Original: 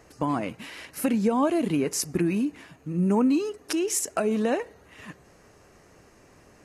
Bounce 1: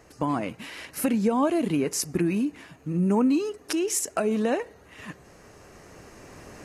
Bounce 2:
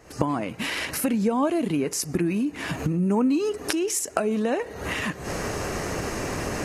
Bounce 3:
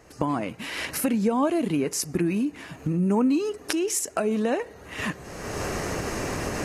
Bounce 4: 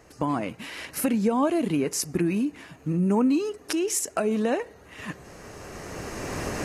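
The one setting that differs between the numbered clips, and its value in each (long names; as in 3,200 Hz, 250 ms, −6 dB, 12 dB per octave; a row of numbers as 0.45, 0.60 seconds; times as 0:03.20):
camcorder AGC, rising by: 5, 83, 33, 13 dB per second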